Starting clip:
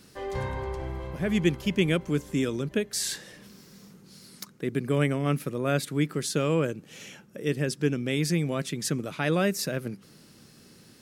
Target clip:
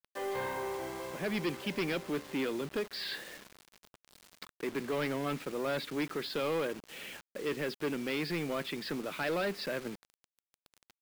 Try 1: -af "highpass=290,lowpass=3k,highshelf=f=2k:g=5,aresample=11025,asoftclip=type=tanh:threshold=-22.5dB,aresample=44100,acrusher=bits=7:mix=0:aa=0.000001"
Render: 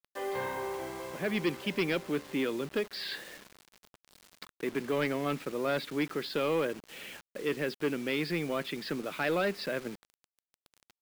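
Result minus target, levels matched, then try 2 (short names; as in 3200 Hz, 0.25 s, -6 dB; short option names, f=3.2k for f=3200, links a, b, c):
soft clip: distortion -5 dB
-af "highpass=290,lowpass=3k,highshelf=f=2k:g=5,aresample=11025,asoftclip=type=tanh:threshold=-28.5dB,aresample=44100,acrusher=bits=7:mix=0:aa=0.000001"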